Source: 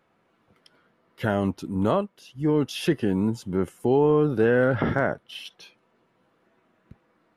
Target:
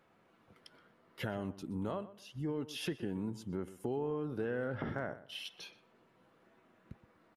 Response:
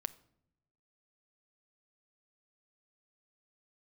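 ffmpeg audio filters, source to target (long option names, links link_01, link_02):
-filter_complex "[0:a]acompressor=threshold=-40dB:ratio=2.5,asplit=2[link_01][link_02];[link_02]adelay=123,lowpass=frequency=2700:poles=1,volume=-15dB,asplit=2[link_03][link_04];[link_04]adelay=123,lowpass=frequency=2700:poles=1,volume=0.24,asplit=2[link_05][link_06];[link_06]adelay=123,lowpass=frequency=2700:poles=1,volume=0.24[link_07];[link_01][link_03][link_05][link_07]amix=inputs=4:normalize=0,volume=-1.5dB"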